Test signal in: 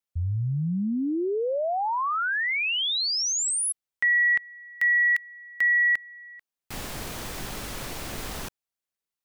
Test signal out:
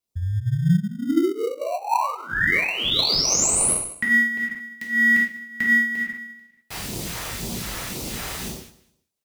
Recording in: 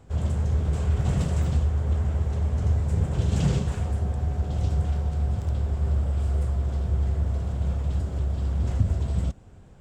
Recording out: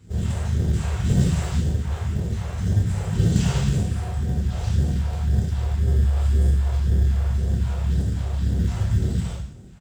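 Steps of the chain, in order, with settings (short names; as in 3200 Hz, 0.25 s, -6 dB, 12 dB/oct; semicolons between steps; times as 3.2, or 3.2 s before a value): HPF 85 Hz 12 dB/oct; bell 280 Hz +3 dB 0.7 oct; non-linear reverb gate 0.24 s falling, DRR -5 dB; phaser stages 2, 1.9 Hz, lowest notch 230–1400 Hz; on a send: feedback echo 0.2 s, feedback 20%, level -20 dB; on the sum: dynamic EQ 3900 Hz, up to -3 dB, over -34 dBFS, Q 0.78; in parallel at -10 dB: sample-and-hold 26×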